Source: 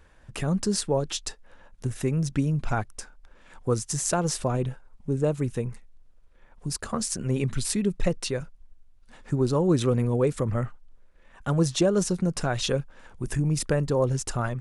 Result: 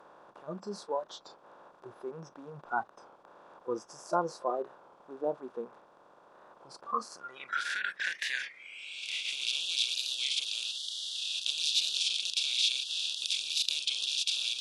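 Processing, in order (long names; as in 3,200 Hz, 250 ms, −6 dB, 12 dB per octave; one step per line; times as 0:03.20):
compressor on every frequency bin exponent 0.2
dynamic equaliser 8,100 Hz, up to −5 dB, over −36 dBFS, Q 1.5
band-pass filter sweep 1,000 Hz → 3,700 Hz, 0:06.89–0:09.91
noise reduction from a noise print of the clip's start 26 dB
wow of a warped record 33 1/3 rpm, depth 100 cents
level +1.5 dB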